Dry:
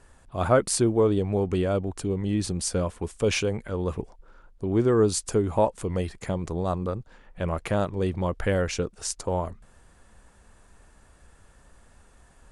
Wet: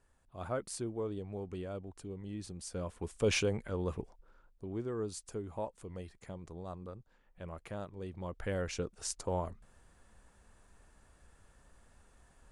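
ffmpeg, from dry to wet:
-af "volume=4.5dB,afade=t=in:st=2.67:d=0.7:silence=0.266073,afade=t=out:st=3.37:d=1.47:silence=0.251189,afade=t=in:st=8.09:d=0.97:silence=0.334965"

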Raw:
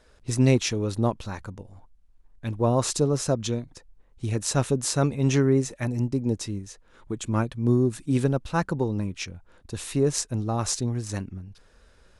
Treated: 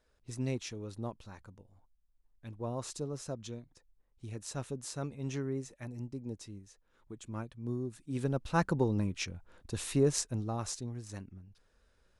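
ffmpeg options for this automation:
-af "volume=-3.5dB,afade=t=in:st=8.09:d=0.53:silence=0.251189,afade=t=out:st=9.89:d=0.89:silence=0.334965"

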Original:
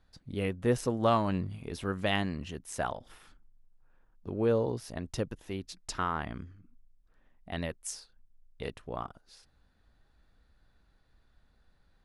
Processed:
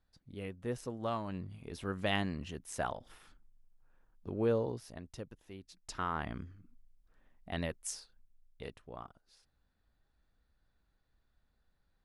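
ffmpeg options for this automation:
-af "volume=7.5dB,afade=t=in:st=1.28:d=0.86:silence=0.421697,afade=t=out:st=4.44:d=0.69:silence=0.354813,afade=t=in:st=5.7:d=0.59:silence=0.298538,afade=t=out:st=7.93:d=0.91:silence=0.398107"

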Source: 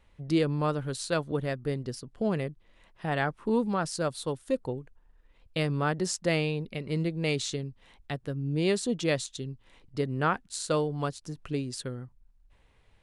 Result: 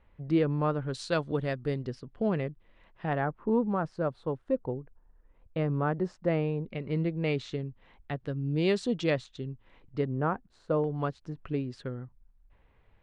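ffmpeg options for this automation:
-af "asetnsamples=n=441:p=0,asendcmd='0.94 lowpass f 5000;1.87 lowpass f 2800;3.13 lowpass f 1300;6.69 lowpass f 2300;8.17 lowpass f 4200;9.1 lowpass f 2400;10.05 lowpass f 1000;10.84 lowpass f 2200',lowpass=2.1k"

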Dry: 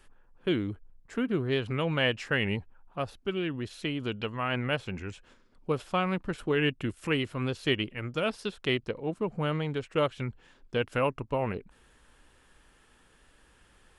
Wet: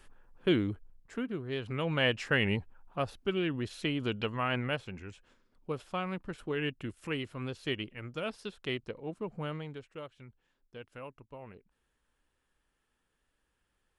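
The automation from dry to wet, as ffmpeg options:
-af "volume=11dB,afade=t=out:st=0.59:d=0.83:silence=0.281838,afade=t=in:st=1.42:d=0.8:silence=0.316228,afade=t=out:st=4.37:d=0.55:silence=0.446684,afade=t=out:st=9.41:d=0.61:silence=0.281838"

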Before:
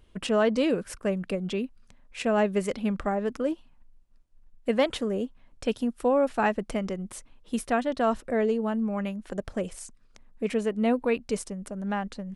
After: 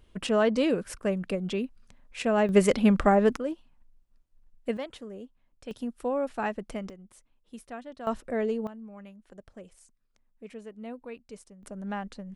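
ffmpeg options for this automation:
-af "asetnsamples=n=441:p=0,asendcmd='2.49 volume volume 7dB;3.36 volume volume -4dB;4.77 volume volume -13dB;5.71 volume volume -6dB;6.9 volume volume -15dB;8.07 volume volume -3.5dB;8.67 volume volume -16dB;11.63 volume volume -4.5dB',volume=-0.5dB"

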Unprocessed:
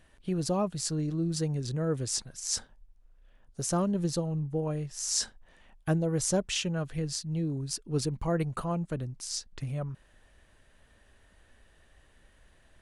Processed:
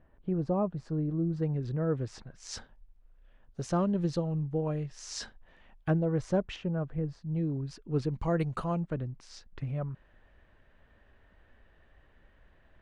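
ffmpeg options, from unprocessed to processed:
-af "asetnsamples=n=441:p=0,asendcmd='1.42 lowpass f 1900;2.4 lowpass f 3400;5.9 lowpass f 2000;6.56 lowpass f 1100;7.36 lowpass f 2300;8.14 lowpass f 5700;8.8 lowpass f 2300',lowpass=1.1k"

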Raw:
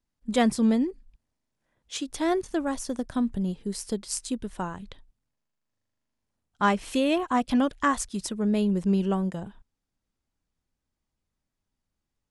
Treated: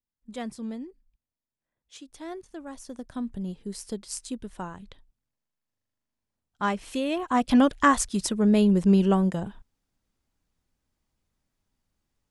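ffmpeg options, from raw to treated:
-af "volume=4.5dB,afade=t=in:st=2.57:d=1.02:silence=0.354813,afade=t=in:st=7.16:d=0.43:silence=0.375837"

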